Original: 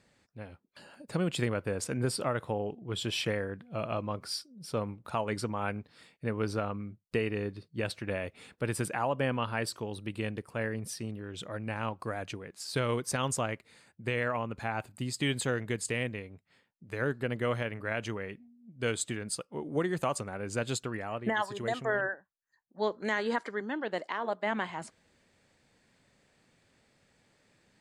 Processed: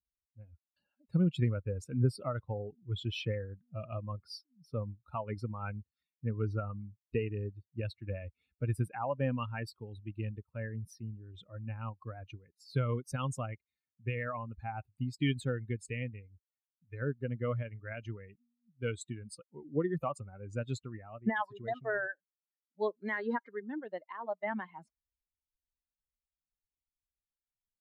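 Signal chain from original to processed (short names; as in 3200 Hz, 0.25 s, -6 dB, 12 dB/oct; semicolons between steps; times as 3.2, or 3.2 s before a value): per-bin expansion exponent 2; tone controls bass +8 dB, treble -11 dB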